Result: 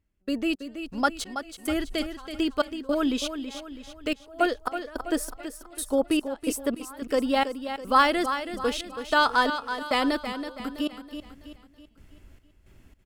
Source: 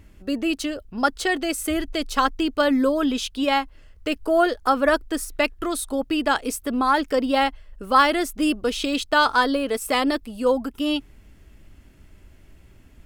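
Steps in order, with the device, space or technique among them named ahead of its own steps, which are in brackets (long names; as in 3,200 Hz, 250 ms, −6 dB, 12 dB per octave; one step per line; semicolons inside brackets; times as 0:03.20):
trance gate with a delay (gate pattern "..xx..xxx...xxx" 109 BPM −24 dB; repeating echo 327 ms, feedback 45%, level −9.5 dB)
0:04.89–0:06.70: dynamic equaliser 560 Hz, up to +6 dB, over −36 dBFS, Q 0.78
level −3 dB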